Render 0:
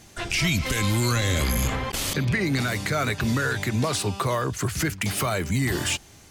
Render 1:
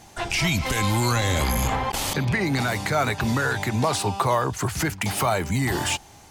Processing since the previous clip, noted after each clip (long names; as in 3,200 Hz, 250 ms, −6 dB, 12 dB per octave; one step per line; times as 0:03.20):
parametric band 840 Hz +11.5 dB 0.59 octaves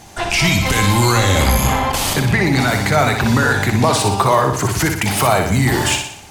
flutter between parallel walls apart 10.4 metres, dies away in 0.62 s
level +7 dB